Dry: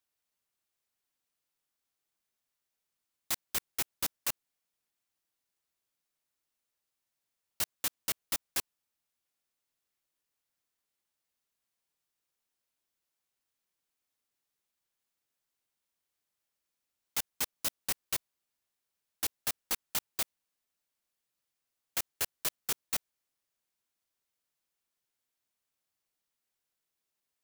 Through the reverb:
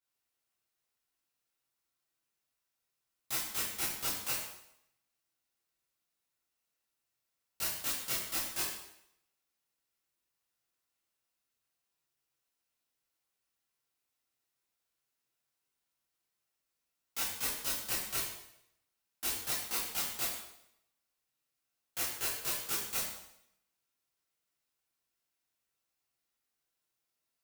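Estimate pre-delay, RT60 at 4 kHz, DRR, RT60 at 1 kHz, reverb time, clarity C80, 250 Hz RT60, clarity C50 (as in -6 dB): 7 ms, 0.70 s, -9.5 dB, 0.75 s, 0.75 s, 5.5 dB, 0.75 s, 2.0 dB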